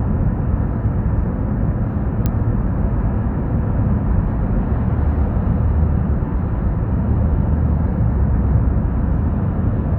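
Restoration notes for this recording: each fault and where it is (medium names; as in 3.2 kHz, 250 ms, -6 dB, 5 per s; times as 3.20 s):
2.26 s: pop -7 dBFS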